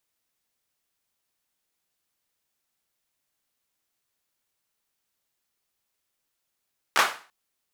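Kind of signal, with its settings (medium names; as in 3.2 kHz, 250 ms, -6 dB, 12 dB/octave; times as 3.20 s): hand clap length 0.34 s, bursts 3, apart 14 ms, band 1.2 kHz, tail 0.38 s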